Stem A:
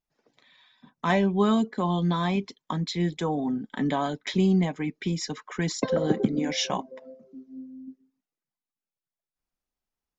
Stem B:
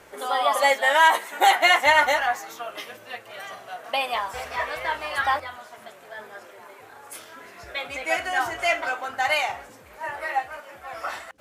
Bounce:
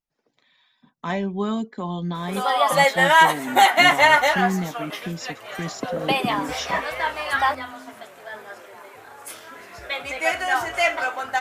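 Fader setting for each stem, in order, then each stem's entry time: -3.0, +2.5 dB; 0.00, 2.15 s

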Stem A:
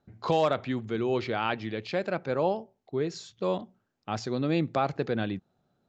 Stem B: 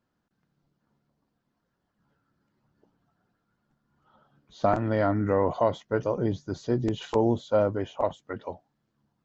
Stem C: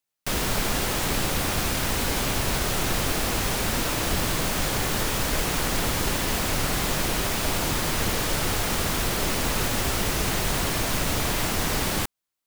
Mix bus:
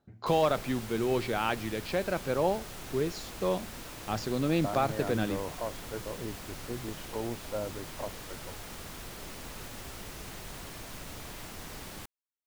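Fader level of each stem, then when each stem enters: -1.0, -12.5, -18.0 dB; 0.00, 0.00, 0.00 s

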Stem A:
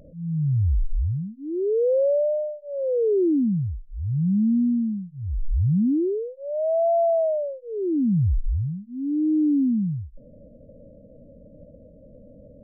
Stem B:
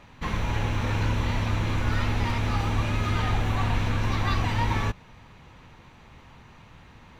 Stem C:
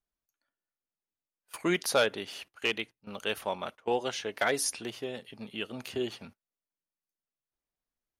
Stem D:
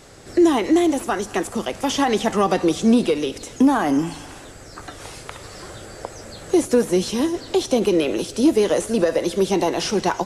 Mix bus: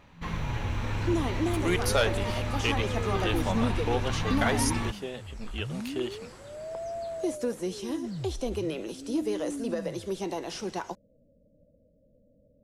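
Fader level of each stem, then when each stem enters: -15.5, -5.5, 0.0, -13.5 dB; 0.00, 0.00, 0.00, 0.70 s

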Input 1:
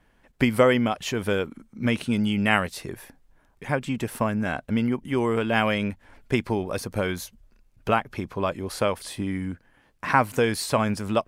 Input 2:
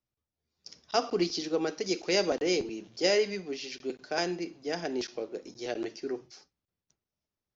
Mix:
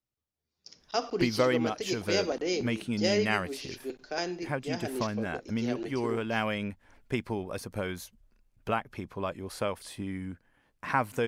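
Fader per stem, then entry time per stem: -7.5, -2.5 dB; 0.80, 0.00 s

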